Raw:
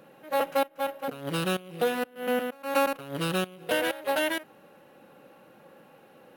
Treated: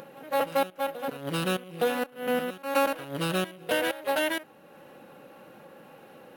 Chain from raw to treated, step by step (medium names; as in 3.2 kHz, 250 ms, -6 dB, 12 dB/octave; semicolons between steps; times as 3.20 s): upward compressor, threshold -43 dBFS; reverse echo 866 ms -16 dB